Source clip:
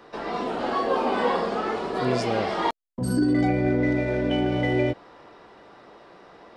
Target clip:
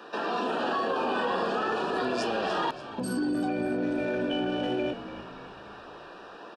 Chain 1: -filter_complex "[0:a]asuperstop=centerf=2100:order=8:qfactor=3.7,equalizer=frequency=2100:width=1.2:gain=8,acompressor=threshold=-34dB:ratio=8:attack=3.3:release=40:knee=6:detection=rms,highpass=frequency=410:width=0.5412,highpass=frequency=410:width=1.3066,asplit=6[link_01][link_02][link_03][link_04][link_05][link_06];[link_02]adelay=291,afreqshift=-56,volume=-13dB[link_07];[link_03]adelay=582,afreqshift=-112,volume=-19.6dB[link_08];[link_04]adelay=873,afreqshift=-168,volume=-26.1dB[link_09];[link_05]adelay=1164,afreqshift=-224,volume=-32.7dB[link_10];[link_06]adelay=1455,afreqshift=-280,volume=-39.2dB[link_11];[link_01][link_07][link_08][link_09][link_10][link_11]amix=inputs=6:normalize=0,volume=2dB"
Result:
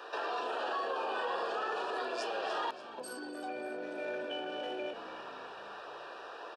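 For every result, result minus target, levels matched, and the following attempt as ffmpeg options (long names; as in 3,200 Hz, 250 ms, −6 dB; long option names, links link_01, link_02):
250 Hz band −8.0 dB; downward compressor: peak gain reduction +6 dB
-filter_complex "[0:a]asuperstop=centerf=2100:order=8:qfactor=3.7,equalizer=frequency=2100:width=1.2:gain=8,acompressor=threshold=-34dB:ratio=8:attack=3.3:release=40:knee=6:detection=rms,highpass=frequency=180:width=0.5412,highpass=frequency=180:width=1.3066,asplit=6[link_01][link_02][link_03][link_04][link_05][link_06];[link_02]adelay=291,afreqshift=-56,volume=-13dB[link_07];[link_03]adelay=582,afreqshift=-112,volume=-19.6dB[link_08];[link_04]adelay=873,afreqshift=-168,volume=-26.1dB[link_09];[link_05]adelay=1164,afreqshift=-224,volume=-32.7dB[link_10];[link_06]adelay=1455,afreqshift=-280,volume=-39.2dB[link_11];[link_01][link_07][link_08][link_09][link_10][link_11]amix=inputs=6:normalize=0,volume=2dB"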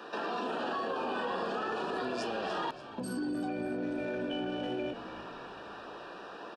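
downward compressor: peak gain reduction +6 dB
-filter_complex "[0:a]asuperstop=centerf=2100:order=8:qfactor=3.7,equalizer=frequency=2100:width=1.2:gain=8,acompressor=threshold=-27dB:ratio=8:attack=3.3:release=40:knee=6:detection=rms,highpass=frequency=180:width=0.5412,highpass=frequency=180:width=1.3066,asplit=6[link_01][link_02][link_03][link_04][link_05][link_06];[link_02]adelay=291,afreqshift=-56,volume=-13dB[link_07];[link_03]adelay=582,afreqshift=-112,volume=-19.6dB[link_08];[link_04]adelay=873,afreqshift=-168,volume=-26.1dB[link_09];[link_05]adelay=1164,afreqshift=-224,volume=-32.7dB[link_10];[link_06]adelay=1455,afreqshift=-280,volume=-39.2dB[link_11];[link_01][link_07][link_08][link_09][link_10][link_11]amix=inputs=6:normalize=0,volume=2dB"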